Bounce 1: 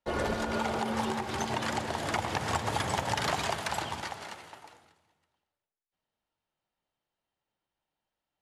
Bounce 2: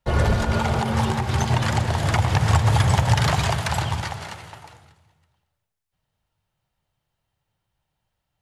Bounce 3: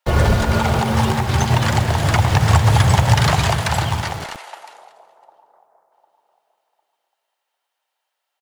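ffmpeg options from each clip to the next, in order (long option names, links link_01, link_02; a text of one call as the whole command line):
ffmpeg -i in.wav -af "lowshelf=frequency=180:width_type=q:width=1.5:gain=11.5,volume=7dB" out.wav
ffmpeg -i in.wav -filter_complex "[0:a]acrossover=split=510|860[link_01][link_02][link_03];[link_01]acrusher=bits=5:mix=0:aa=0.000001[link_04];[link_02]aecho=1:1:752|1504|2256|3008:0.282|0.093|0.0307|0.0101[link_05];[link_04][link_05][link_03]amix=inputs=3:normalize=0,volume=4.5dB" out.wav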